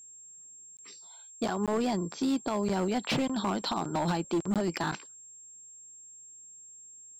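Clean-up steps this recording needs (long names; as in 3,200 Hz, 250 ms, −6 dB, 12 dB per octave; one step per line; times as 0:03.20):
clipped peaks rebuilt −23.5 dBFS
notch filter 7,500 Hz, Q 30
repair the gap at 0:00.77/0:01.66/0:04.54, 17 ms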